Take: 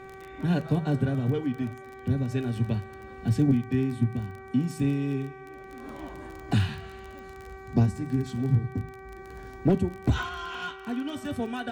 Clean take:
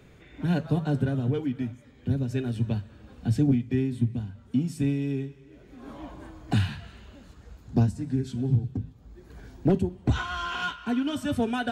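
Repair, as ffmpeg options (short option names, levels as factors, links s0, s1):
-af "adeclick=t=4,bandreject=f=384.3:t=h:w=4,bandreject=f=768.6:t=h:w=4,bandreject=f=1152.9:t=h:w=4,bandreject=f=1537.2:t=h:w=4,bandreject=f=1921.5:t=h:w=4,bandreject=f=2305.8:t=h:w=4,asetnsamples=n=441:p=0,asendcmd='10.29 volume volume 5dB',volume=1"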